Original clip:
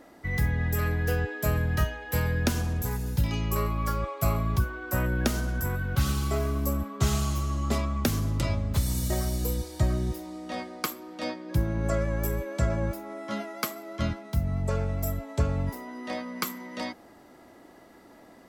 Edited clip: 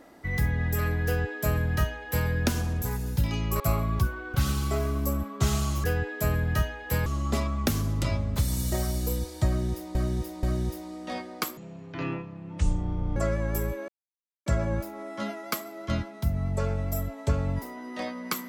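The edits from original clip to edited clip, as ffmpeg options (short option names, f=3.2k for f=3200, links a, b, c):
-filter_complex "[0:a]asplit=10[a][b][c][d][e][f][g][h][i][j];[a]atrim=end=3.602[k];[b]atrim=start=4.168:end=4.912[l];[c]atrim=start=5.938:end=7.442[m];[d]atrim=start=1.058:end=2.282[n];[e]atrim=start=7.438:end=10.332[o];[f]atrim=start=9.848:end=10.332[p];[g]atrim=start=9.848:end=10.994[q];[h]atrim=start=10.99:end=11.85,asetpts=PTS-STARTPTS,asetrate=23814,aresample=44100,atrim=end_sample=70233,asetpts=PTS-STARTPTS[r];[i]atrim=start=11.846:end=12.57,asetpts=PTS-STARTPTS,afade=t=out:st=0.72:d=0.004:c=hsin,apad=pad_dur=0.58[s];[j]atrim=start=12.57,asetpts=PTS-STARTPTS,afade=t=in:d=0.004:c=hsin[t];[k][l]acrossfade=d=0.004:c1=hsin:c2=hsin[u];[u][m]acrossfade=d=0.004:c1=hsin:c2=hsin[v];[v][n]acrossfade=d=0.004:c1=hsin:c2=hsin[w];[w][o]acrossfade=d=0.004:c1=hsin:c2=hsin[x];[x][p]acrossfade=d=0.004:c1=hsin:c2=hsin[y];[y][q]acrossfade=d=0.004:c1=hsin:c2=hsin[z];[z][r]acrossfade=d=0.004:c1=hsin:c2=hsin[aa];[s][t]concat=n=2:v=0:a=1[ab];[aa][ab]acrossfade=d=0.004:c1=hsin:c2=hsin"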